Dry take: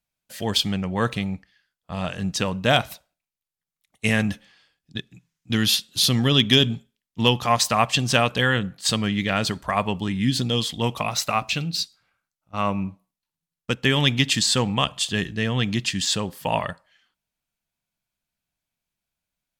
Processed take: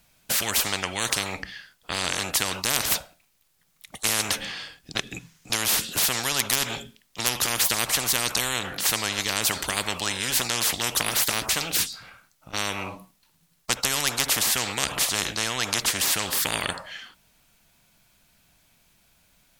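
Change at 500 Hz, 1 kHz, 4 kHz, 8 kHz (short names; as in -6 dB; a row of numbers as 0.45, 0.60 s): -8.0, -5.0, -2.5, +6.5 dB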